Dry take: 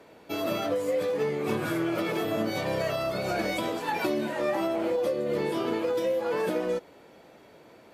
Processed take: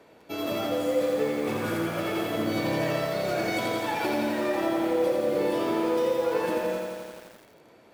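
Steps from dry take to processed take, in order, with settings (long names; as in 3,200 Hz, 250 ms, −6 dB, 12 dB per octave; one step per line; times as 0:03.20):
feedback echo at a low word length 85 ms, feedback 80%, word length 8 bits, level −3 dB
level −2 dB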